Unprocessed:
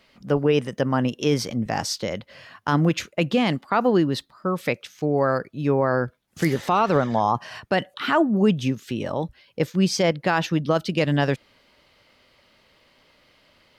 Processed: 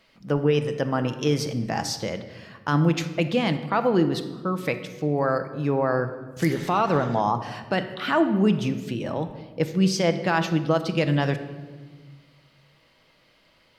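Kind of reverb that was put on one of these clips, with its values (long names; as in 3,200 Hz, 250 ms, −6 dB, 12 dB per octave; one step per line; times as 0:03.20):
rectangular room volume 1,200 cubic metres, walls mixed, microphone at 0.66 metres
level −2.5 dB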